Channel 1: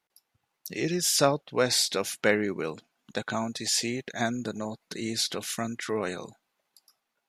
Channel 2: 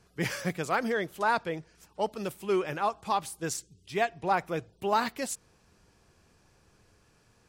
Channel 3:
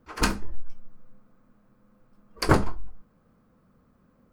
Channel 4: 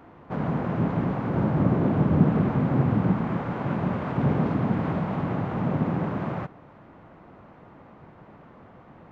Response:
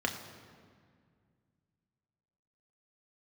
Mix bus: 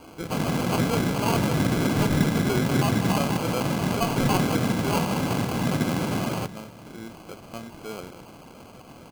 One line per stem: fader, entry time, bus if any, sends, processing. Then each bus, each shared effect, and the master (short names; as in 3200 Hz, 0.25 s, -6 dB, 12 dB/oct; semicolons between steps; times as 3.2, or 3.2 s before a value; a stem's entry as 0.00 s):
-7.0 dB, 1.95 s, no send, no echo send, dry
-4.0 dB, 0.00 s, send -9 dB, echo send -6 dB, Wiener smoothing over 41 samples
-18.0 dB, 1.55 s, no send, no echo send, dry
+2.5 dB, 0.00 s, send -20 dB, no echo send, compressor 2:1, threshold -25 dBFS, peak gain reduction 7 dB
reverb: on, RT60 2.0 s, pre-delay 3 ms
echo: echo 0.195 s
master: LPF 1800 Hz 12 dB/oct; sample-and-hold 24×